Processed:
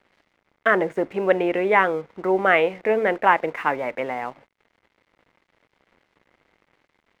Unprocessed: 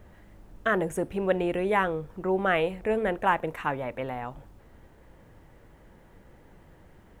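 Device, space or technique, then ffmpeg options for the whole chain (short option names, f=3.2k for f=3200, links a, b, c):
pocket radio on a weak battery: -af "highpass=280,lowpass=3k,aeval=exprs='sgn(val(0))*max(abs(val(0))-0.00168,0)':c=same,equalizer=f=2.1k:t=o:w=0.21:g=7.5,volume=7dB"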